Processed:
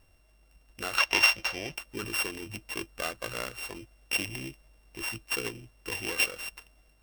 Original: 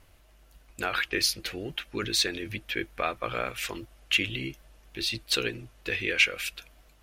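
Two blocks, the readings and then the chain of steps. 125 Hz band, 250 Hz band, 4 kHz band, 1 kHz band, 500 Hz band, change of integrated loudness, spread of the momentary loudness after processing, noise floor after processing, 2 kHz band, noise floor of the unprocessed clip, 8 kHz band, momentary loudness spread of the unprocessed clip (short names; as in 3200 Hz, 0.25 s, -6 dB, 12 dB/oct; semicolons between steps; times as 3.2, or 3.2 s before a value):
-4.5 dB, -4.5 dB, -3.5 dB, -1.5 dB, -4.5 dB, -1.0 dB, 17 LU, -63 dBFS, -1.0 dB, -58 dBFS, -1.5 dB, 12 LU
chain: sample sorter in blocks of 16 samples; spectral gain 0.98–1.75, 500–6800 Hz +10 dB; gain -4.5 dB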